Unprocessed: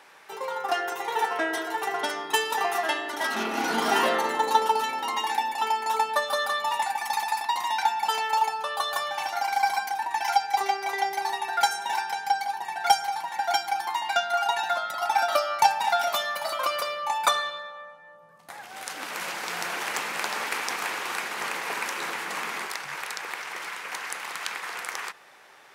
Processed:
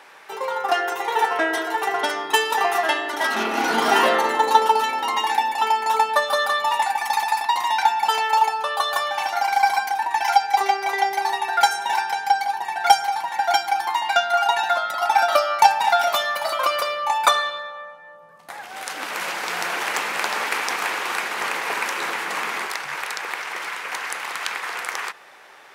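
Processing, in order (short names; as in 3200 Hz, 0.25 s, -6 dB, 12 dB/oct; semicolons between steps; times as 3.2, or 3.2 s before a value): tone controls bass -5 dB, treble -3 dB; gain +6 dB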